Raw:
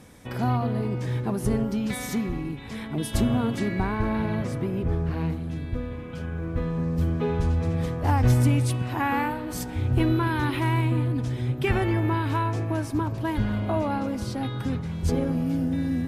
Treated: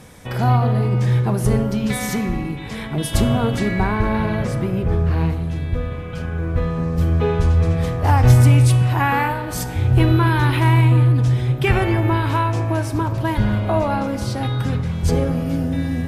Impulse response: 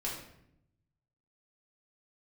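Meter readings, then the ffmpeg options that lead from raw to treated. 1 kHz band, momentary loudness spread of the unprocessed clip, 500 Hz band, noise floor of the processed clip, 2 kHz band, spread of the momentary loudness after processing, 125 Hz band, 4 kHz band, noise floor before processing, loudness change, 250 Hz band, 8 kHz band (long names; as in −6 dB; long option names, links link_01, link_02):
+7.5 dB, 8 LU, +6.5 dB, −29 dBFS, +7.5 dB, 10 LU, +9.5 dB, +8.0 dB, −35 dBFS, +7.5 dB, +4.0 dB, +7.5 dB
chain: -filter_complex "[0:a]equalizer=frequency=280:width_type=o:width=0.58:gain=-6.5,asplit=2[link_01][link_02];[1:a]atrim=start_sample=2205,asetrate=28665,aresample=44100[link_03];[link_02][link_03]afir=irnorm=-1:irlink=0,volume=-14dB[link_04];[link_01][link_04]amix=inputs=2:normalize=0,volume=6dB"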